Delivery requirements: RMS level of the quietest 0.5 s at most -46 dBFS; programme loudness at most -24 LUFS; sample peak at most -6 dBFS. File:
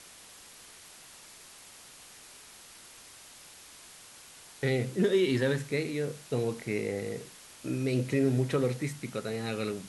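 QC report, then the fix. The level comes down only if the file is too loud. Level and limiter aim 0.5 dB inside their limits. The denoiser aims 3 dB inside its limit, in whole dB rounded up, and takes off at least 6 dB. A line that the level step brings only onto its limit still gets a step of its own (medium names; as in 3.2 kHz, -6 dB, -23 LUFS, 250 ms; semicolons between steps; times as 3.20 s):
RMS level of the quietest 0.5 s -52 dBFS: pass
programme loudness -30.5 LUFS: pass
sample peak -14.5 dBFS: pass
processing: none needed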